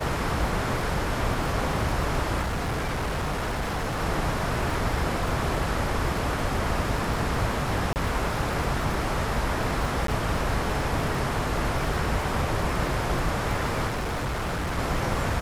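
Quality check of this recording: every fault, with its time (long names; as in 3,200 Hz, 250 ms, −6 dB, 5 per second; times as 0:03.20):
surface crackle 62 per second −32 dBFS
0:02.41–0:04.01: clipping −24.5 dBFS
0:07.93–0:07.96: drop-out 29 ms
0:10.07–0:10.08: drop-out 13 ms
0:13.87–0:14.79: clipping −25.5 dBFS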